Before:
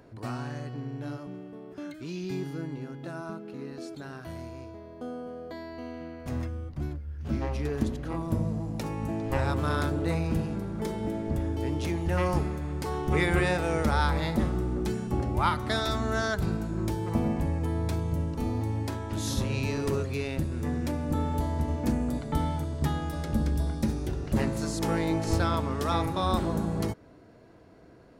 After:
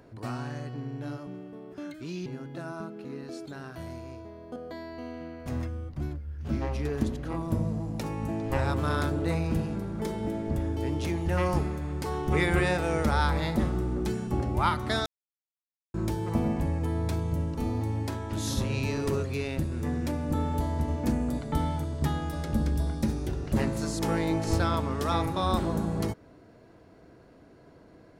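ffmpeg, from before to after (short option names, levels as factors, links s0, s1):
-filter_complex "[0:a]asplit=5[s0][s1][s2][s3][s4];[s0]atrim=end=2.262[s5];[s1]atrim=start=2.748:end=5.052[s6];[s2]atrim=start=5.358:end=15.86,asetpts=PTS-STARTPTS,afade=t=out:st=10.498:d=0.004:c=hsin[s7];[s3]atrim=start=15.86:end=16.74,asetpts=PTS-STARTPTS,volume=0[s8];[s4]atrim=start=16.74,asetpts=PTS-STARTPTS,afade=t=in:d=0.004:c=hsin[s9];[s5][s6]acrossfade=d=0.004:c1=hsin:c2=hsin[s10];[s7][s8][s9]concat=n=3:v=0:a=1[s11];[s10][s11]acrossfade=d=0.004:c1=hsin:c2=hsin"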